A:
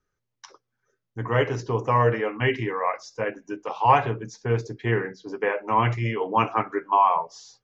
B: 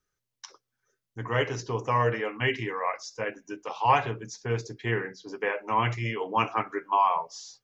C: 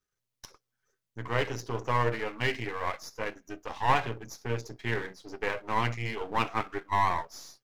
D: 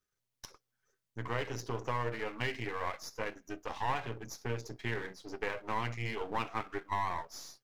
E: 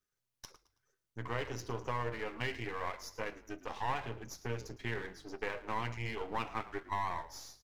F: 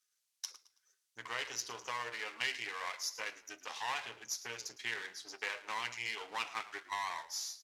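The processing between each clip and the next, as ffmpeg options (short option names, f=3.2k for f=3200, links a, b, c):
-af "highshelf=f=2.4k:g=10,volume=-5.5dB"
-af "aeval=exprs='if(lt(val(0),0),0.251*val(0),val(0))':c=same"
-af "acompressor=threshold=-31dB:ratio=2.5,volume=-1dB"
-filter_complex "[0:a]asplit=4[a][b][c][d];[b]adelay=109,afreqshift=-46,volume=-17dB[e];[c]adelay=218,afreqshift=-92,volume=-25.9dB[f];[d]adelay=327,afreqshift=-138,volume=-34.7dB[g];[a][e][f][g]amix=inputs=4:normalize=0,volume=-2dB"
-af "bandpass=f=6.7k:t=q:w=0.64:csg=0,volume=10.5dB"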